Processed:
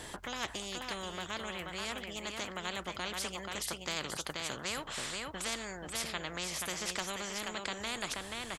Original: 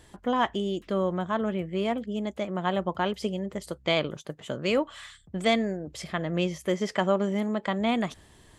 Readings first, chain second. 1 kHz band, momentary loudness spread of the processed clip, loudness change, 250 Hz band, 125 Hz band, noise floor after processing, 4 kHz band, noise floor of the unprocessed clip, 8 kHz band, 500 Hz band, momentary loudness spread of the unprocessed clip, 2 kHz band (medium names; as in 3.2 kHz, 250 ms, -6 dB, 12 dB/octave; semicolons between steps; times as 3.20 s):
-10.0 dB, 3 LU, -9.0 dB, -17.0 dB, -14.5 dB, -47 dBFS, -1.5 dB, -56 dBFS, +8.5 dB, -15.0 dB, 9 LU, -4.0 dB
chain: on a send: delay 481 ms -10.5 dB; on the sum: spectrum-flattening compressor 4:1; trim -6.5 dB